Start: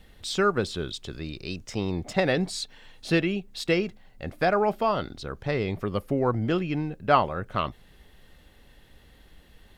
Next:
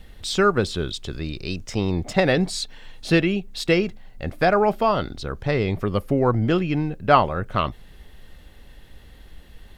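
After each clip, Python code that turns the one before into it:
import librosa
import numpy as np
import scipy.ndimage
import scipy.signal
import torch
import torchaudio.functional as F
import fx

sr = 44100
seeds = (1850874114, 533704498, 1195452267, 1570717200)

y = fx.low_shelf(x, sr, hz=73.0, db=7.0)
y = y * 10.0 ** (4.5 / 20.0)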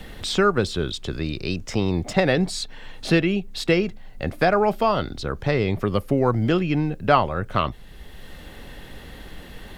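y = fx.band_squash(x, sr, depth_pct=40)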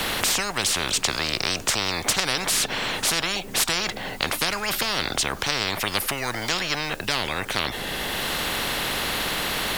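y = fx.spectral_comp(x, sr, ratio=10.0)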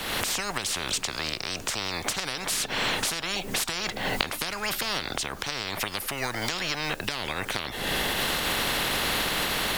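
y = fx.recorder_agc(x, sr, target_db=-9.0, rise_db_per_s=43.0, max_gain_db=30)
y = y * 10.0 ** (-8.5 / 20.0)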